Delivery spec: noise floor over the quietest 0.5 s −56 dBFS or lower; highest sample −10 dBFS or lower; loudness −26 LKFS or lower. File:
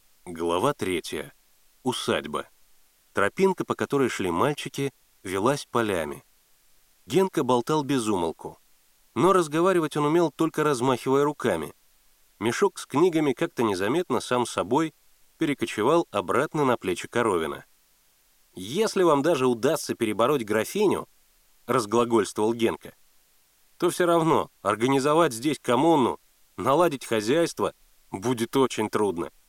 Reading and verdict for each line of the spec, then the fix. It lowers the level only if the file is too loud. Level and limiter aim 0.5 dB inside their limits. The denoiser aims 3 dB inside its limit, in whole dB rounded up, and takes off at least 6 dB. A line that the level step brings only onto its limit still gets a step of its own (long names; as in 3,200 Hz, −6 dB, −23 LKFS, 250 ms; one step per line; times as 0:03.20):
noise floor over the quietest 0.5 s −63 dBFS: in spec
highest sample −7.0 dBFS: out of spec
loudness −25.0 LKFS: out of spec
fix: level −1.5 dB
brickwall limiter −10.5 dBFS